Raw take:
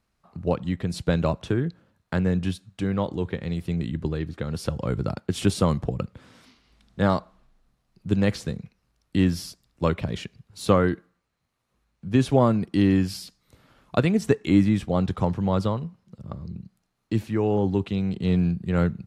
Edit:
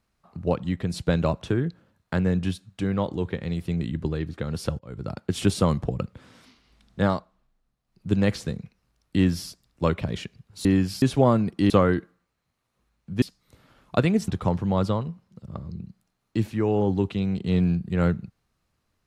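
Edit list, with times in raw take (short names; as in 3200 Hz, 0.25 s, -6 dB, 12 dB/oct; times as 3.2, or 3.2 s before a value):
4.79–5.29 fade in
7.02–8.07 dip -9 dB, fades 0.25 s
10.65–12.17 swap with 12.85–13.22
14.28–15.04 cut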